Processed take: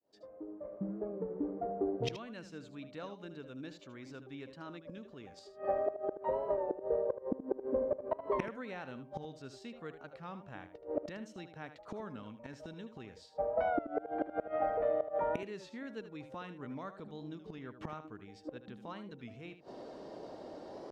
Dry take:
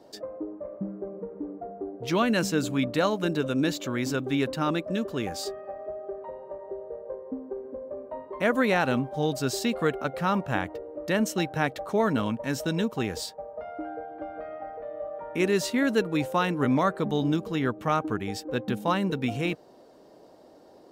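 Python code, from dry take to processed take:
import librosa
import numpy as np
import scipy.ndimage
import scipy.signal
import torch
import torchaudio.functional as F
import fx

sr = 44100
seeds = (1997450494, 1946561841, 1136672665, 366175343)

p1 = fx.fade_in_head(x, sr, length_s=3.02)
p2 = scipy.signal.sosfilt(scipy.signal.butter(2, 5200.0, 'lowpass', fs=sr, output='sos'), p1)
p3 = fx.gate_flip(p2, sr, shuts_db=-27.0, range_db=-26)
p4 = p3 + fx.echo_single(p3, sr, ms=77, db=-11.5, dry=0)
p5 = fx.record_warp(p4, sr, rpm=33.33, depth_cents=100.0)
y = F.gain(torch.from_numpy(p5), 5.5).numpy()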